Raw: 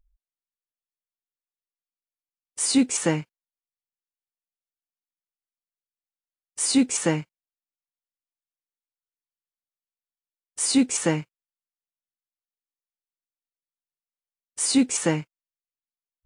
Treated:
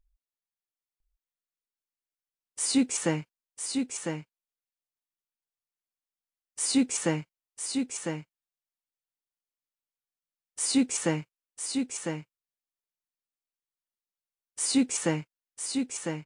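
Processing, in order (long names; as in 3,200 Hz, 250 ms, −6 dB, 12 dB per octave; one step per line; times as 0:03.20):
single-tap delay 1,002 ms −5.5 dB
level −4.5 dB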